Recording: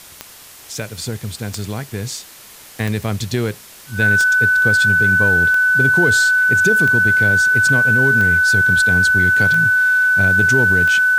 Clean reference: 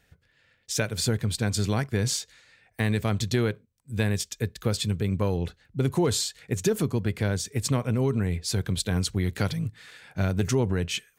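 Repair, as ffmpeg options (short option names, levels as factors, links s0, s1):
-af "adeclick=t=4,bandreject=f=1500:w=30,afwtdn=0.011,asetnsamples=n=441:p=0,asendcmd='2.56 volume volume -4.5dB',volume=1"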